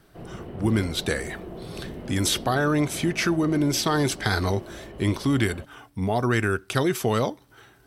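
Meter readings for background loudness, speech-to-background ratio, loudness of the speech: −39.5 LKFS, 15.0 dB, −24.5 LKFS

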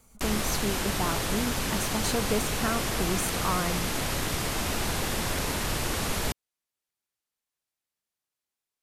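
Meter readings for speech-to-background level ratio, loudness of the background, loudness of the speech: −3.5 dB, −29.0 LKFS, −32.5 LKFS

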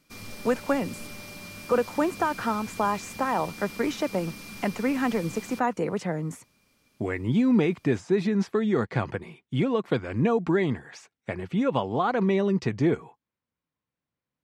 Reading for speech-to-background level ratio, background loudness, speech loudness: 13.5 dB, −40.5 LKFS, −27.0 LKFS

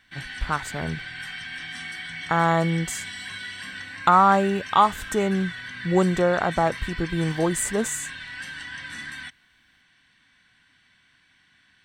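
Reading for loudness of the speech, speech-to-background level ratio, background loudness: −23.0 LKFS, 11.5 dB, −34.5 LKFS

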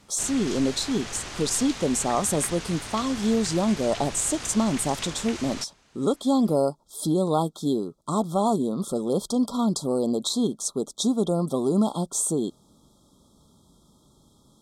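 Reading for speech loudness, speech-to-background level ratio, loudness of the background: −25.5 LKFS, 10.0 dB, −35.5 LKFS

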